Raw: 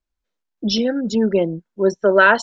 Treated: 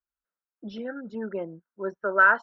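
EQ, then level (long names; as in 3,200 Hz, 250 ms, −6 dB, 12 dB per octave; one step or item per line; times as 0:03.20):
resonant band-pass 1,400 Hz, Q 3.4
spectral tilt −4.5 dB per octave
0.0 dB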